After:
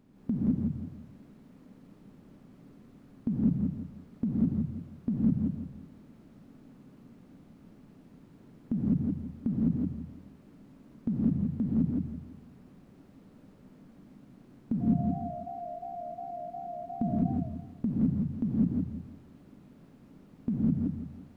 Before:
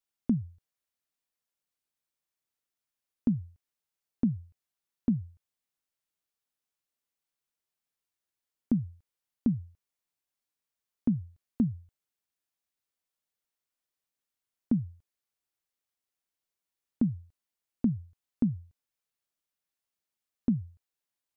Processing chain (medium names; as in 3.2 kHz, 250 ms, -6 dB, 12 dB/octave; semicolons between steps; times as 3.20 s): spectral levelling over time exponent 0.4; 14.80–17.16 s: whistle 700 Hz -39 dBFS; gated-style reverb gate 230 ms rising, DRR -6 dB; modulated delay 169 ms, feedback 33%, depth 176 cents, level -4 dB; trim -6.5 dB